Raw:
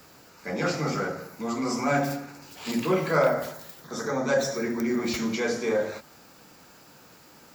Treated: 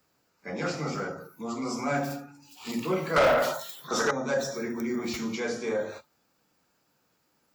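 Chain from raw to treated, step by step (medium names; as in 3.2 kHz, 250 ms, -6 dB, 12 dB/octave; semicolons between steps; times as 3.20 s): spectral noise reduction 15 dB; 3.16–4.11 s: overdrive pedal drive 23 dB, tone 4.2 kHz, clips at -10 dBFS; trim -4 dB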